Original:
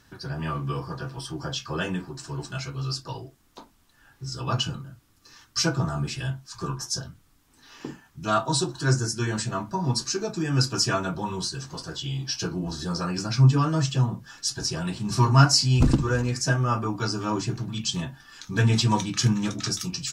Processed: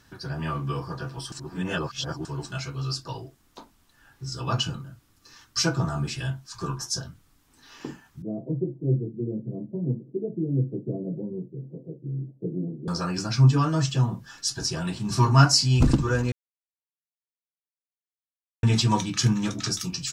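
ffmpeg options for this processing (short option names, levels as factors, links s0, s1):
-filter_complex "[0:a]asettb=1/sr,asplit=3[s0][s1][s2];[s0]atrim=end=8.224[s3];[s1]atrim=start=8.22:end=12.88,asetpts=PTS-STARTPTS,afade=t=in:d=0.004:c=qsin,afade=t=out:st=4.656:d=0.004:c=qsin,asuperpass=centerf=260:order=12:qfactor=0.61[s4];[s2]atrim=start=12.876[s5];[s3][s4]acrossfade=d=0.004:c1=hsin:c2=qsin[s6];[s6][s5]acrossfade=d=0.004:c1=qsin:c2=hsin,asplit=5[s7][s8][s9][s10][s11];[s7]atrim=end=1.322[s12];[s8]atrim=start=1.318:end=2.252,asetpts=PTS-STARTPTS,areverse[s13];[s9]atrim=start=2.248:end=16.32,asetpts=PTS-STARTPTS,afade=t=out:st=14.068:d=0.004:c=hsin[s14];[s10]atrim=start=16.32:end=18.63,asetpts=PTS-STARTPTS,volume=0[s15];[s11]atrim=start=18.63,asetpts=PTS-STARTPTS,afade=t=in:d=0.004:c=hsin[s16];[s12][s13]acrossfade=d=0.004:c1=hsin:c2=hsin[s17];[s14][s15][s16]concat=n=3:v=0:a=1[s18];[s17][s18]acrossfade=d=0.004:c1=hsin:c2=hsin"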